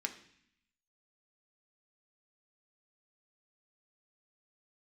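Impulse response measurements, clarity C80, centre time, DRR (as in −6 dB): 15.0 dB, 9 ms, 4.5 dB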